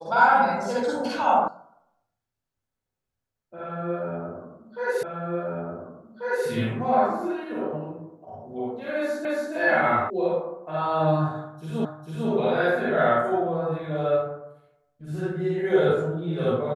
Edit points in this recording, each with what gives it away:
1.48 sound cut off
5.03 repeat of the last 1.44 s
9.25 repeat of the last 0.28 s
10.1 sound cut off
11.85 repeat of the last 0.45 s

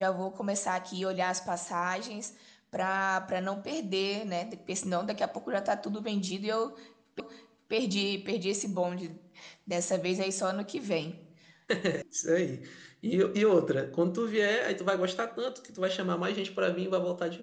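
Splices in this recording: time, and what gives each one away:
7.2 repeat of the last 0.53 s
12.02 sound cut off

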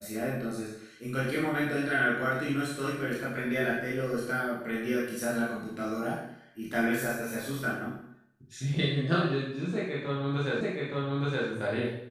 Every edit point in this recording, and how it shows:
10.61 repeat of the last 0.87 s

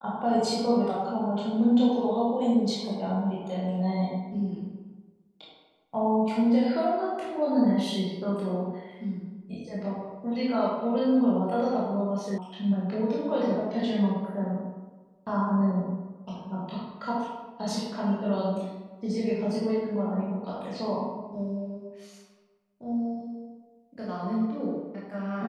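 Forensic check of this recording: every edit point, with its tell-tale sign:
12.38 sound cut off

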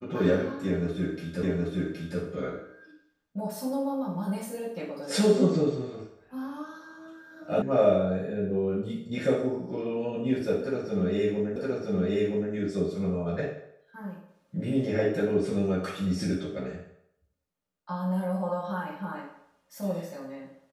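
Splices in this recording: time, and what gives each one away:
1.43 repeat of the last 0.77 s
7.62 sound cut off
11.56 repeat of the last 0.97 s

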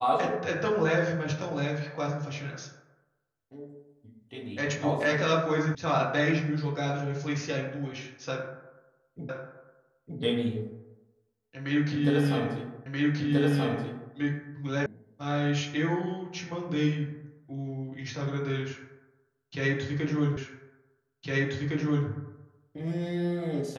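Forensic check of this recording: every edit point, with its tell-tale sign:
5.75 sound cut off
9.29 repeat of the last 0.91 s
12.86 repeat of the last 1.28 s
14.86 sound cut off
20.37 repeat of the last 1.71 s

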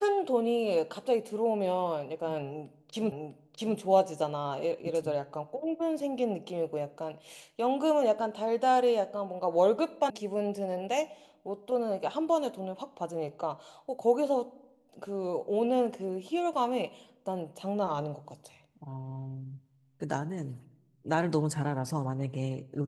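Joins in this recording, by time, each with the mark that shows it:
3.12 repeat of the last 0.65 s
10.1 sound cut off

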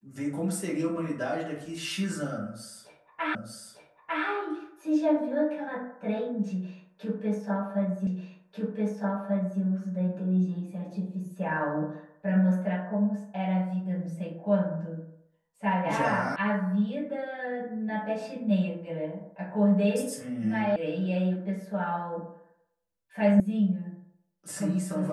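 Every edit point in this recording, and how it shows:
3.35 repeat of the last 0.9 s
8.07 repeat of the last 1.54 s
16.36 sound cut off
20.76 sound cut off
23.4 sound cut off

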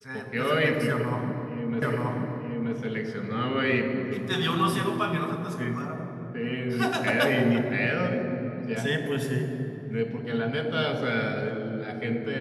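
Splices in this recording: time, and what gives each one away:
1.82 repeat of the last 0.93 s

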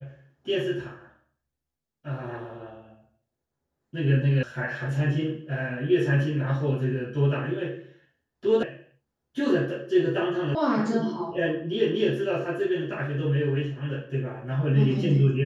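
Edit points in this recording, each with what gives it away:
4.43 sound cut off
8.63 sound cut off
10.55 sound cut off

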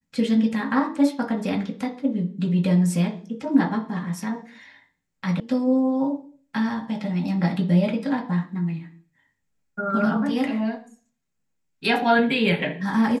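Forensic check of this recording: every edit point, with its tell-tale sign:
5.4 sound cut off

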